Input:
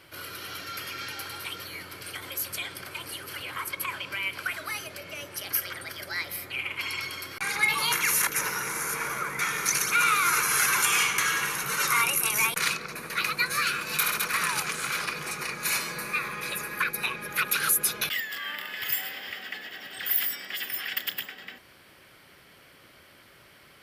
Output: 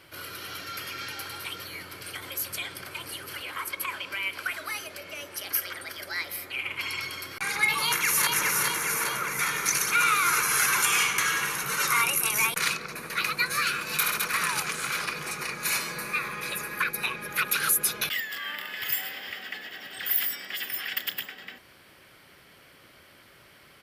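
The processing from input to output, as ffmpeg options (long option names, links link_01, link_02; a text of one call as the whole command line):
ffmpeg -i in.wav -filter_complex "[0:a]asettb=1/sr,asplit=3[link_01][link_02][link_03];[link_01]atrim=end=3.384[link_04];[link_02]atrim=start=3.38:end=6.65,asetpts=PTS-STARTPTS,afade=type=in:duration=0.004:curve=qsin,afade=type=out:start_time=3.266:duration=0.004:curve=qsin,equalizer=frequency=130:width_type=o:width=0.77:gain=-11[link_05];[link_03]atrim=start=6.646[link_06];[link_04][link_05]acrossfade=duration=0.004:curve1=hsin:curve2=qsin[link_07];[link_07][link_06]acrossfade=duration=0.004:curve1=qsin:curve2=hsin,asplit=2[link_08][link_09];[link_09]afade=type=in:start_time=7.76:duration=0.01,afade=type=out:start_time=8.29:duration=0.01,aecho=0:1:410|820|1230|1640|2050|2460|2870|3280|3690|4100:0.707946|0.460165|0.299107|0.19442|0.126373|0.0821423|0.0533925|0.0347051|0.0225583|0.0146629[link_10];[link_08][link_10]amix=inputs=2:normalize=0" out.wav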